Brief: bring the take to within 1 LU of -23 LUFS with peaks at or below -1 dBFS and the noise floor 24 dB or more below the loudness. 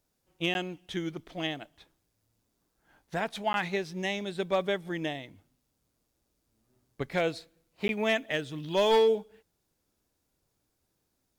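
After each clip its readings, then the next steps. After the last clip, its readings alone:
clipped samples 0.2%; clipping level -18.0 dBFS; dropouts 3; longest dropout 11 ms; loudness -30.5 LUFS; peak level -18.0 dBFS; loudness target -23.0 LUFS
-> clip repair -18 dBFS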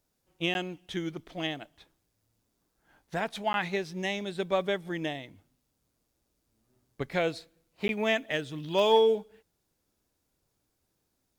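clipped samples 0.0%; dropouts 3; longest dropout 11 ms
-> interpolate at 0.54/3.53/7.88 s, 11 ms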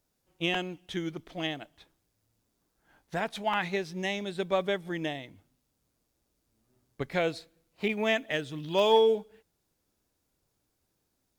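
dropouts 0; loudness -30.0 LUFS; peak level -12.0 dBFS; loudness target -23.0 LUFS
-> trim +7 dB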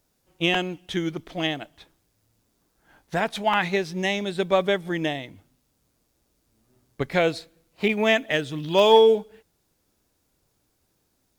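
loudness -23.5 LUFS; peak level -5.0 dBFS; noise floor -71 dBFS

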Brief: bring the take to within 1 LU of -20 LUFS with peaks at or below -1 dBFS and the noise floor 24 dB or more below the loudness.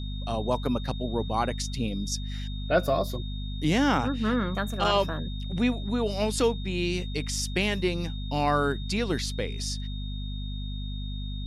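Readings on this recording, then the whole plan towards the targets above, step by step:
hum 50 Hz; highest harmonic 250 Hz; hum level -31 dBFS; steady tone 3.7 kHz; tone level -43 dBFS; loudness -28.5 LUFS; peak level -10.5 dBFS; loudness target -20.0 LUFS
-> de-hum 50 Hz, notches 5; band-stop 3.7 kHz, Q 30; trim +8.5 dB

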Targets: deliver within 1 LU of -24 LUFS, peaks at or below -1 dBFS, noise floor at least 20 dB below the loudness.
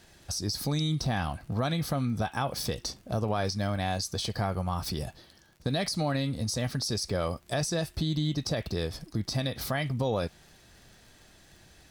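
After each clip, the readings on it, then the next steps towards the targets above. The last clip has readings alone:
tick rate 35 per s; loudness -31.0 LUFS; peak level -16.5 dBFS; loudness target -24.0 LUFS
-> de-click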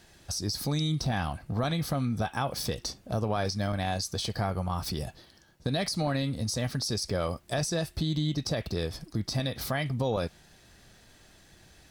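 tick rate 0.50 per s; loudness -31.0 LUFS; peak level -16.5 dBFS; loudness target -24.0 LUFS
-> trim +7 dB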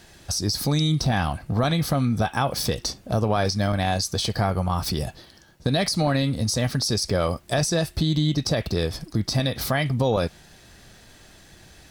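loudness -24.0 LUFS; peak level -9.5 dBFS; noise floor -51 dBFS

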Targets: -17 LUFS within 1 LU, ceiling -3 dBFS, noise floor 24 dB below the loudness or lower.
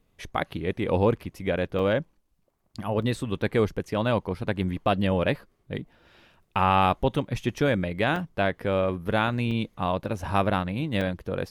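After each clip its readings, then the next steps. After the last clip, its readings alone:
dropouts 5; longest dropout 3.7 ms; loudness -26.5 LUFS; peak level -11.0 dBFS; loudness target -17.0 LUFS
-> interpolate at 1.79/3.02/8.16/9.51/11.01 s, 3.7 ms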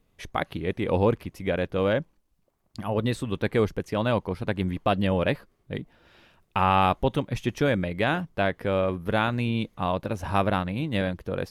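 dropouts 0; loudness -26.5 LUFS; peak level -11.0 dBFS; loudness target -17.0 LUFS
-> trim +9.5 dB; peak limiter -3 dBFS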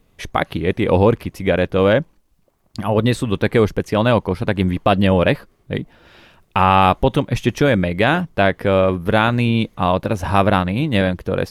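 loudness -17.5 LUFS; peak level -3.0 dBFS; noise floor -60 dBFS

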